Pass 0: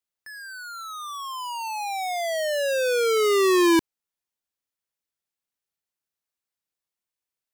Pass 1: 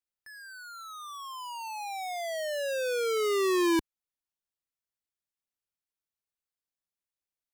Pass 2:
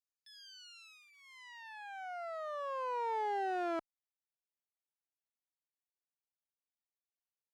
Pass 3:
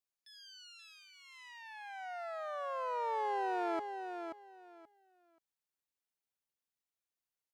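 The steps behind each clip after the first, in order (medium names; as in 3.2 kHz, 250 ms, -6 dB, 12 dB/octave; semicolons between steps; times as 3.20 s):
bass shelf 89 Hz +8 dB; trim -7.5 dB
comb filter that takes the minimum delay 0.43 ms; band-pass sweep 6.2 kHz -> 890 Hz, 0.11–2.10 s
feedback delay 530 ms, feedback 20%, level -7 dB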